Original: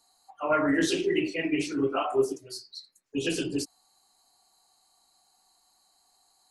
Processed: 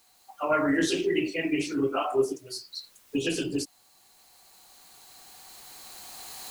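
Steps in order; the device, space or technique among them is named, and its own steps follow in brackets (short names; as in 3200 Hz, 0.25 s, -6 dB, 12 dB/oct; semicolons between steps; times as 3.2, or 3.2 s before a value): cheap recorder with automatic gain (white noise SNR 34 dB; recorder AGC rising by 7.5 dB/s)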